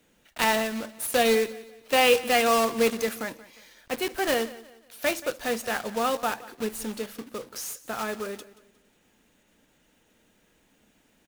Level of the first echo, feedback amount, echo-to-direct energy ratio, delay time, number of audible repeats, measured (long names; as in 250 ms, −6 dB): −18.5 dB, 36%, −18.0 dB, 179 ms, 2